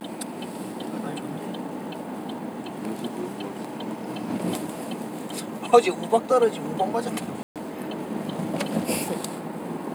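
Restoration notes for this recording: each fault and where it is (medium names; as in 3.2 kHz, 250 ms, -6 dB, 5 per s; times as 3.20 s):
7.43–7.56 s: dropout 127 ms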